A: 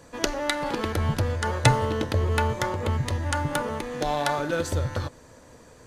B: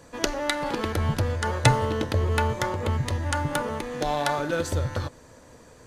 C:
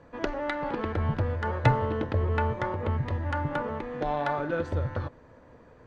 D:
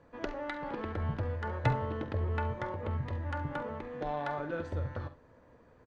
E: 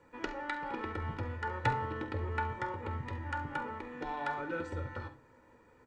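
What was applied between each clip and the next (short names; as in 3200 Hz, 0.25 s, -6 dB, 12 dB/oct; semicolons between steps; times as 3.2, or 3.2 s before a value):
nothing audible
LPF 2000 Hz 12 dB/oct; gain -2.5 dB
early reflections 47 ms -14.5 dB, 69 ms -16 dB; gain -7 dB
reverb RT60 0.35 s, pre-delay 3 ms, DRR 12.5 dB; gain +2 dB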